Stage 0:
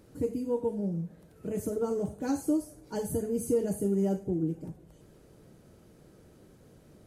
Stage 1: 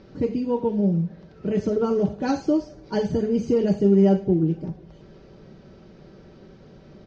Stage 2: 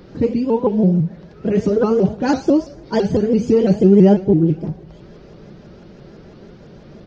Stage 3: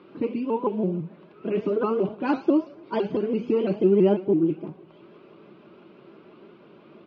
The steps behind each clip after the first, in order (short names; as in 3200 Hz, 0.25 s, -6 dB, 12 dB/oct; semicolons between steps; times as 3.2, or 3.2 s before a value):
steep low-pass 5600 Hz 48 dB/oct; comb 5.2 ms, depth 38%; dynamic EQ 3000 Hz, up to +5 dB, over -57 dBFS, Q 1.2; gain +8.5 dB
shaped vibrato saw up 6 Hz, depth 160 cents; gain +6.5 dB
speaker cabinet 330–3100 Hz, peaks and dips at 340 Hz +3 dB, 500 Hz -8 dB, 760 Hz -6 dB, 1100 Hz +5 dB, 1800 Hz -10 dB, 2600 Hz +4 dB; gain -3 dB